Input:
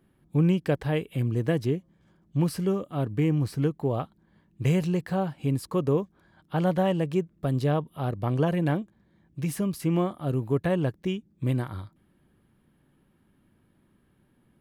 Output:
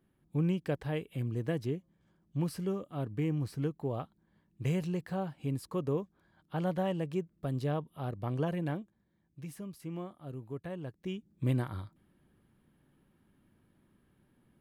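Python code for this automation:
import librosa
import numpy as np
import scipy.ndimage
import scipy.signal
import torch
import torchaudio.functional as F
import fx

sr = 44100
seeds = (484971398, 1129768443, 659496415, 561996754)

y = fx.gain(x, sr, db=fx.line((8.49, -8.0), (9.61, -15.5), (10.84, -15.5), (11.32, -3.5)))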